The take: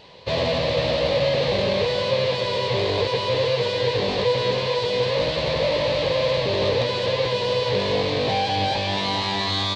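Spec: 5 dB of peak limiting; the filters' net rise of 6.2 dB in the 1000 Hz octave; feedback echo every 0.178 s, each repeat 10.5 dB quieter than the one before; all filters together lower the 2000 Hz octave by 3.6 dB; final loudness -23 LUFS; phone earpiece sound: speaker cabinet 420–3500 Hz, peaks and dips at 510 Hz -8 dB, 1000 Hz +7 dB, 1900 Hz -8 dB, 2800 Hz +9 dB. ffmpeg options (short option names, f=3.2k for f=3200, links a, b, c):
-af "equalizer=f=1k:t=o:g=4,equalizer=f=2k:t=o:g=-8,alimiter=limit=-14.5dB:level=0:latency=1,highpass=420,equalizer=f=510:t=q:w=4:g=-8,equalizer=f=1k:t=q:w=4:g=7,equalizer=f=1.9k:t=q:w=4:g=-8,equalizer=f=2.8k:t=q:w=4:g=9,lowpass=f=3.5k:w=0.5412,lowpass=f=3.5k:w=1.3066,aecho=1:1:178|356|534:0.299|0.0896|0.0269,volume=1.5dB"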